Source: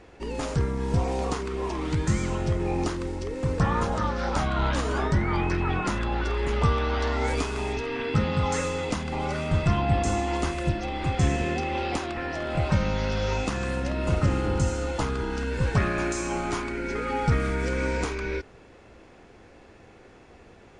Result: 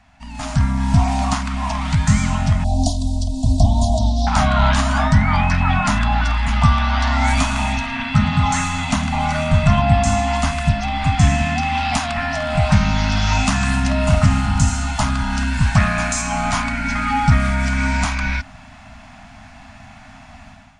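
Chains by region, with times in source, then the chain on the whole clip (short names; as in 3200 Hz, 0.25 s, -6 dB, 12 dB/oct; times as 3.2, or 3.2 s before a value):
2.64–4.27 elliptic band-stop 740–3700 Hz, stop band 50 dB + comb 3 ms, depth 80%
7.25–9.82 notch 5000 Hz, Q 10 + feedback echo 0.112 s, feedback 41%, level -14 dB
11.63–16.22 high shelf 7700 Hz +9 dB + Doppler distortion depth 0.12 ms
whole clip: Chebyshev band-stop 270–620 Hz, order 5; AGC gain up to 13 dB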